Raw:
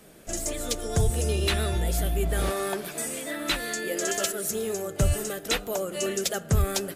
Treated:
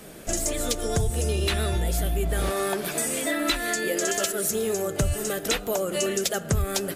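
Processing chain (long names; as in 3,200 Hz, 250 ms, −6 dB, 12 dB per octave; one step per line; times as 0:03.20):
0:03.23–0:03.76: comb filter 3 ms
downward compressor 3 to 1, threshold −32 dBFS, peak gain reduction 11 dB
level +8 dB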